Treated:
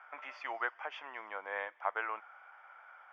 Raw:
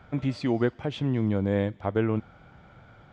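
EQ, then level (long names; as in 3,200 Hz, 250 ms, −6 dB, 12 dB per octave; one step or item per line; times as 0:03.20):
moving average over 11 samples
high-pass filter 930 Hz 24 dB per octave
high-frequency loss of the air 100 metres
+5.5 dB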